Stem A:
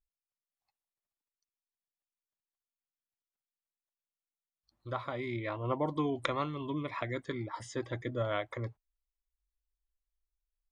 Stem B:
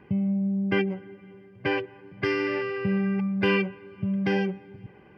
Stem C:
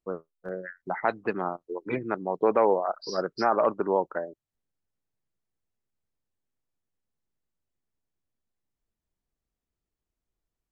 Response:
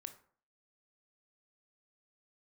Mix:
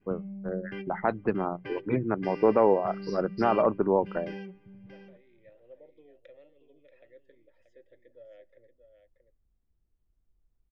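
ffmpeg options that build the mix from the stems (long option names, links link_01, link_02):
-filter_complex "[0:a]asplit=3[link_01][link_02][link_03];[link_01]bandpass=frequency=530:width_type=q:width=8,volume=0dB[link_04];[link_02]bandpass=frequency=1840:width_type=q:width=8,volume=-6dB[link_05];[link_03]bandpass=frequency=2480:width_type=q:width=8,volume=-9dB[link_06];[link_04][link_05][link_06]amix=inputs=3:normalize=0,equalizer=frequency=1400:width=0.83:gain=-6.5,volume=-12dB,asplit=3[link_07][link_08][link_09];[link_08]volume=-5.5dB[link_10];[link_09]volume=-7dB[link_11];[1:a]adynamicequalizer=threshold=0.00794:dfrequency=900:dqfactor=0.76:tfrequency=900:tqfactor=0.76:attack=5:release=100:ratio=0.375:range=2.5:mode=cutabove:tftype=bell,volume=-14.5dB,asplit=2[link_12][link_13];[link_13]volume=-11dB[link_14];[2:a]aemphasis=mode=reproduction:type=riaa,bandreject=frequency=60:width_type=h:width=6,bandreject=frequency=120:width_type=h:width=6,bandreject=frequency=180:width_type=h:width=6,volume=-2dB[link_15];[3:a]atrim=start_sample=2205[link_16];[link_10][link_16]afir=irnorm=-1:irlink=0[link_17];[link_11][link_14]amix=inputs=2:normalize=0,aecho=0:1:632:1[link_18];[link_07][link_12][link_15][link_17][link_18]amix=inputs=5:normalize=0"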